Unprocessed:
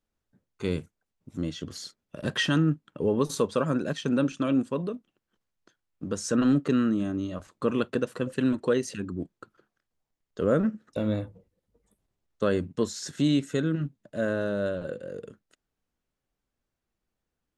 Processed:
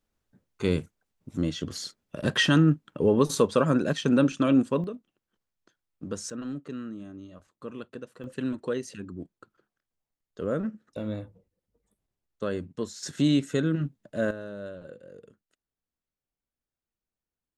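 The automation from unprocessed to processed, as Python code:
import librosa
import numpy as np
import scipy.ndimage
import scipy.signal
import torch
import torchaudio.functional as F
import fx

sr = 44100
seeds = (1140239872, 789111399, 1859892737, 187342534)

y = fx.gain(x, sr, db=fx.steps((0.0, 3.5), (4.84, -3.0), (6.3, -13.0), (8.24, -5.5), (13.03, 1.0), (14.31, -10.0)))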